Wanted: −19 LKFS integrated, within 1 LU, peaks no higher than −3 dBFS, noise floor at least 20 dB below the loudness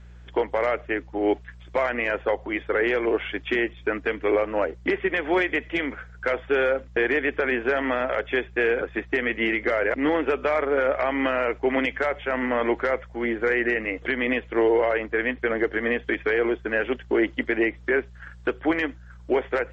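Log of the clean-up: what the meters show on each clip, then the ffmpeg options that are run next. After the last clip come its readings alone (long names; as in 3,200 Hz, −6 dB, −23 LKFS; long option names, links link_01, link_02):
mains hum 60 Hz; hum harmonics up to 180 Hz; level of the hum −43 dBFS; integrated loudness −24.5 LKFS; sample peak −10.5 dBFS; target loudness −19.0 LKFS
→ -af "bandreject=frequency=60:width_type=h:width=4,bandreject=frequency=120:width_type=h:width=4,bandreject=frequency=180:width_type=h:width=4"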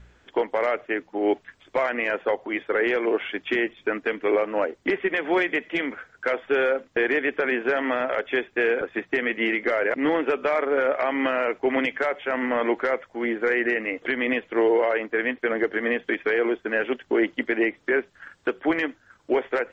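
mains hum none found; integrated loudness −24.5 LKFS; sample peak −10.5 dBFS; target loudness −19.0 LKFS
→ -af "volume=5.5dB"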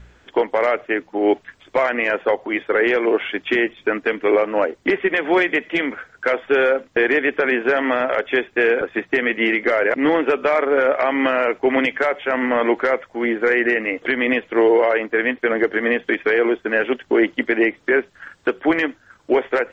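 integrated loudness −19.0 LKFS; sample peak −5.0 dBFS; background noise floor −55 dBFS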